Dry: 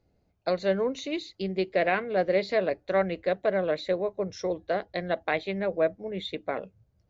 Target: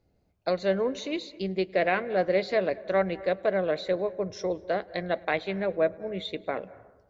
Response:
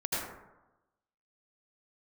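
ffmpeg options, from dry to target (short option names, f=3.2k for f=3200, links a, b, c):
-filter_complex "[0:a]asplit=2[a][b];[1:a]atrim=start_sample=2205,highshelf=f=4.5k:g=-6.5,adelay=105[c];[b][c]afir=irnorm=-1:irlink=0,volume=-25dB[d];[a][d]amix=inputs=2:normalize=0"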